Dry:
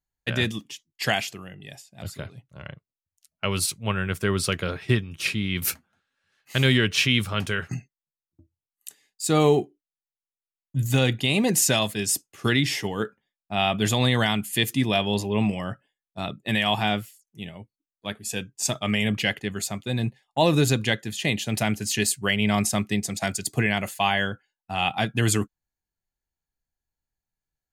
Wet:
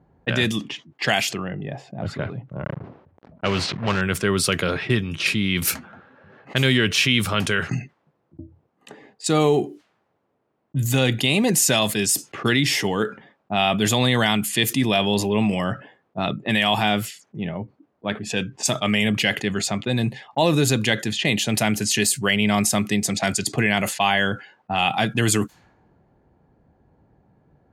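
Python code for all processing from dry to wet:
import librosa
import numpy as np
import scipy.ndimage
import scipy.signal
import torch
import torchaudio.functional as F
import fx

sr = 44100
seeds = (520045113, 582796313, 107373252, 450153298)

y = fx.chain(x, sr, fx.block_float(bits=3),
    fx.air_absorb(metres=180.0),
    fx.sustainer(db_per_s=140.0), at=(2.64, 4.02))
y = fx.env_lowpass(y, sr, base_hz=600.0, full_db=-22.5)
y = scipy.signal.sosfilt(scipy.signal.butter(2, 120.0, 'highpass', fs=sr, output='sos'), y)
y = fx.env_flatten(y, sr, amount_pct=50)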